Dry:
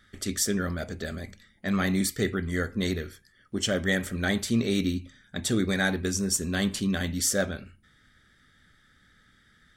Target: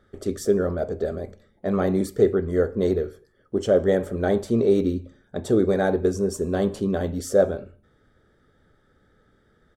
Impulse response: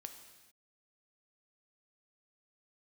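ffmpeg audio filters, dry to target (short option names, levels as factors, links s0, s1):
-filter_complex "[0:a]firequalizer=gain_entry='entry(240,0);entry(420,12);entry(1900,-12)':delay=0.05:min_phase=1,asplit=2[s0][s1];[1:a]atrim=start_sample=2205,asetrate=79380,aresample=44100[s2];[s1][s2]afir=irnorm=-1:irlink=0,volume=0.708[s3];[s0][s3]amix=inputs=2:normalize=0"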